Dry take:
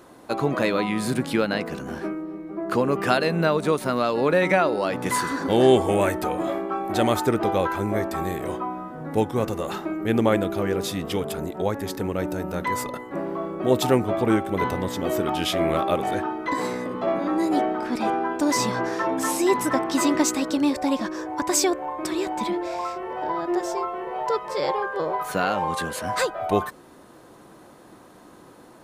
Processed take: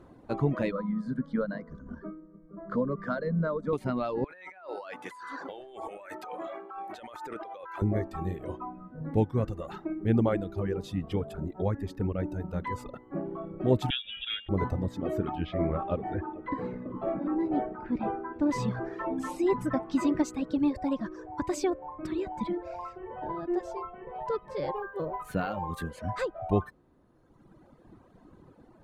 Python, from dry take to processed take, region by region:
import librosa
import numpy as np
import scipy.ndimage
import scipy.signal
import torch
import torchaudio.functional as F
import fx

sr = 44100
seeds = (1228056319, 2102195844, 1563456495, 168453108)

y = fx.chain(x, sr, fx.lowpass(hz=3800.0, slope=12),
    fx.fixed_phaser(hz=530.0, stages=8), at=(0.71, 3.73))
y = fx.chain(y, sr, fx.highpass(hz=730.0, slope=12),
    fx.over_compress(threshold_db=-32.0, ratio=-1.0), at=(4.24, 7.82))
y = fx.chain(y, sr, fx.comb(ms=1.0, depth=0.44),
    fx.freq_invert(carrier_hz=3600), at=(13.9, 14.49))
y = fx.chain(y, sr, fx.lowpass(hz=2400.0, slope=12),
    fx.echo_single(ms=439, db=-14.5), at=(15.35, 18.51))
y = fx.chain(y, sr, fx.peak_eq(hz=9700.0, db=11.0, octaves=0.76),
    fx.resample_bad(factor=2, down='none', up='hold'), at=(24.76, 25.91))
y = fx.notch(y, sr, hz=5400.0, q=25.0)
y = fx.dereverb_blind(y, sr, rt60_s=1.8)
y = fx.riaa(y, sr, side='playback')
y = F.gain(torch.from_numpy(y), -8.5).numpy()